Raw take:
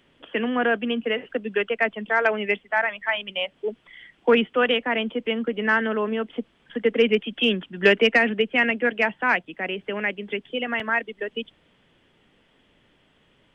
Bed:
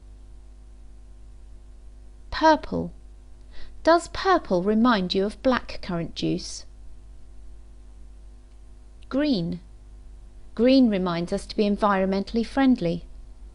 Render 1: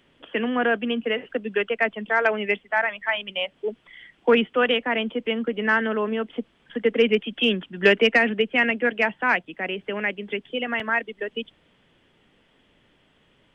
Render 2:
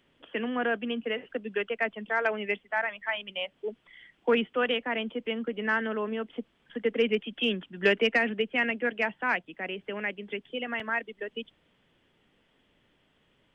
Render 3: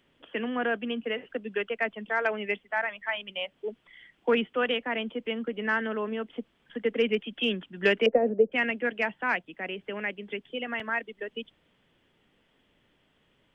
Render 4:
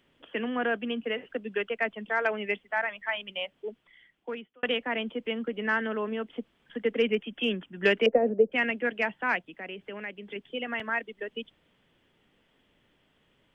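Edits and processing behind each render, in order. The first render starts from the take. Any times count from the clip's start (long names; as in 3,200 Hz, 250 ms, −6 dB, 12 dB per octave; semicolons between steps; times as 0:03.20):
no processing that can be heard
level −6.5 dB
0:08.06–0:08.52: low-pass with resonance 550 Hz, resonance Q 4.6
0:03.36–0:04.63: fade out; 0:07.08–0:07.85: parametric band 4,200 Hz −15 dB 0.33 octaves; 0:09.49–0:10.36: downward compressor 1.5 to 1, threshold −42 dBFS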